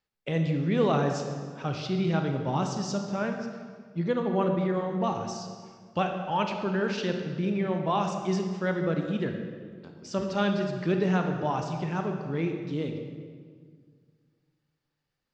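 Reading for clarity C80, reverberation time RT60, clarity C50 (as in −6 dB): 6.5 dB, 1.8 s, 5.0 dB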